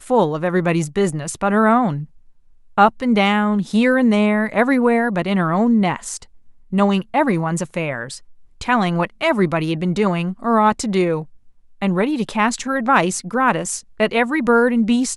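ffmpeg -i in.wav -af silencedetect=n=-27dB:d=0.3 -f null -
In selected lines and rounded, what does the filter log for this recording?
silence_start: 2.04
silence_end: 2.78 | silence_duration: 0.74
silence_start: 6.23
silence_end: 6.73 | silence_duration: 0.50
silence_start: 8.17
silence_end: 8.61 | silence_duration: 0.44
silence_start: 11.23
silence_end: 11.82 | silence_duration: 0.59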